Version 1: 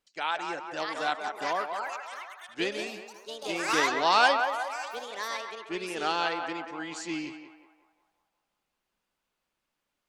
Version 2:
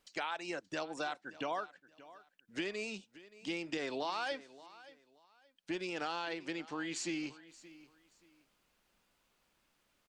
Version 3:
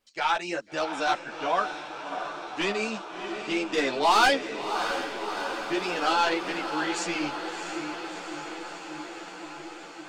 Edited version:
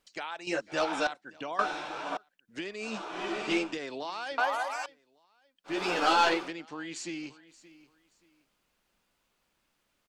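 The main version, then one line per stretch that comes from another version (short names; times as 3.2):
2
0.47–1.07 from 3
1.59–2.17 from 3
2.91–3.67 from 3, crossfade 0.24 s
4.38–4.86 from 1
5.76–6.42 from 3, crossfade 0.24 s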